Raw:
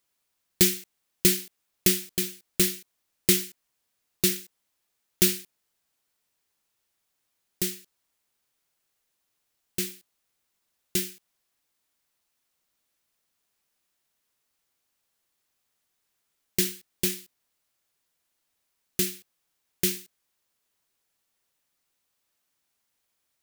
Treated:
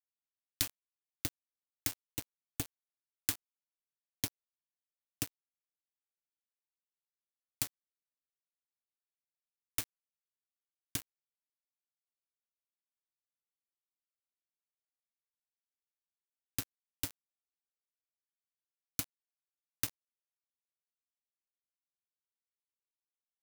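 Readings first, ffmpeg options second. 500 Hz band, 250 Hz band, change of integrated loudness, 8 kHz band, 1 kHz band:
-23.5 dB, -18.5 dB, -14.0 dB, -13.5 dB, -3.0 dB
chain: -filter_complex "[0:a]highpass=110,acompressor=threshold=-34dB:ratio=6,acrossover=split=570[a][b];[a]aeval=exprs='val(0)*(1-0.5/2+0.5/2*cos(2*PI*2.3*n/s))':c=same[c];[b]aeval=exprs='val(0)*(1-0.5/2-0.5/2*cos(2*PI*2.3*n/s))':c=same[d];[c][d]amix=inputs=2:normalize=0,afreqshift=-470,aeval=exprs='val(0)*gte(abs(val(0)),0.0237)':c=same,volume=3.5dB"

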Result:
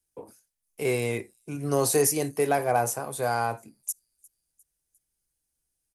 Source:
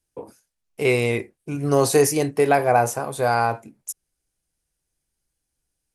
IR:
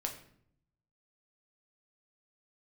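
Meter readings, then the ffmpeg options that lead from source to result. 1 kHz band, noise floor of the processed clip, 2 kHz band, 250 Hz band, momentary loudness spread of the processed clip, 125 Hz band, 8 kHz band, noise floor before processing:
-6.5 dB, -81 dBFS, -7.5 dB, -6.5 dB, 12 LU, -6.5 dB, -0.5 dB, -80 dBFS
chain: -filter_complex "[0:a]highshelf=f=8.1k:g=11.5,acrossover=split=190|1400|5500[a][b][c][d];[c]volume=27dB,asoftclip=hard,volume=-27dB[e];[d]aecho=1:1:353|706|1059:0.0708|0.0361|0.0184[f];[a][b][e][f]amix=inputs=4:normalize=0,volume=-6.5dB"

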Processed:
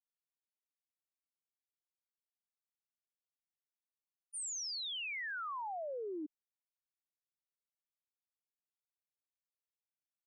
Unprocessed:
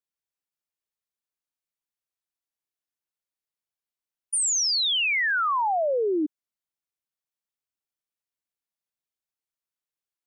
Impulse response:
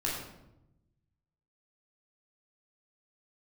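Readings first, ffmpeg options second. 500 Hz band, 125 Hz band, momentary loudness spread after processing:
-17.0 dB, n/a, 8 LU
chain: -af "agate=range=-33dB:threshold=-14dB:ratio=3:detection=peak,volume=-1.5dB"

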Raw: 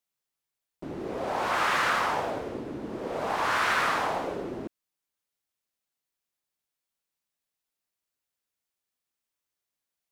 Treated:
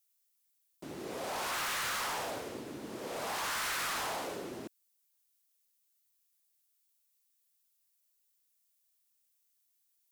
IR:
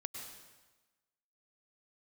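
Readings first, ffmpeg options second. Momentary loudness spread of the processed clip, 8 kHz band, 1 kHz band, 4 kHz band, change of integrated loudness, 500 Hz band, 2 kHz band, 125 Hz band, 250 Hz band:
12 LU, +3.5 dB, -10.5 dB, -2.5 dB, -7.5 dB, -9.0 dB, -9.0 dB, -9.0 dB, -8.5 dB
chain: -af "highpass=75,crystalizer=i=6:c=0,volume=25.5dB,asoftclip=hard,volume=-25.5dB,volume=-8dB"

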